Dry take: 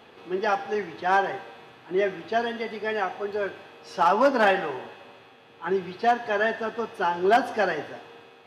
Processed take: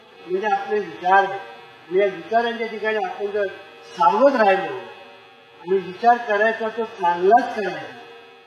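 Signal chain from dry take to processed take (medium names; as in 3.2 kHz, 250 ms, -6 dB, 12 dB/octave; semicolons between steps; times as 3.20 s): harmonic-percussive separation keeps harmonic; bass shelf 230 Hz -7 dB; trim +7.5 dB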